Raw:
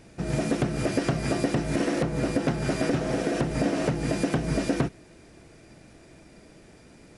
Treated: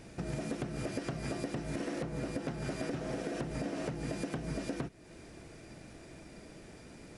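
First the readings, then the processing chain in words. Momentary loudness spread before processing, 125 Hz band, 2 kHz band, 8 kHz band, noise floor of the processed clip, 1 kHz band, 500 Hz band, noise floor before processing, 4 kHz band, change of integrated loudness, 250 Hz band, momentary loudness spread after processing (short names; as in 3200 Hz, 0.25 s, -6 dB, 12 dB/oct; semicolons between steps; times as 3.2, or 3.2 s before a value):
1 LU, -11.0 dB, -11.0 dB, -10.5 dB, -53 dBFS, -11.5 dB, -11.0 dB, -52 dBFS, -10.5 dB, -11.5 dB, -11.5 dB, 14 LU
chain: compressor 3:1, threshold -38 dBFS, peak gain reduction 13.5 dB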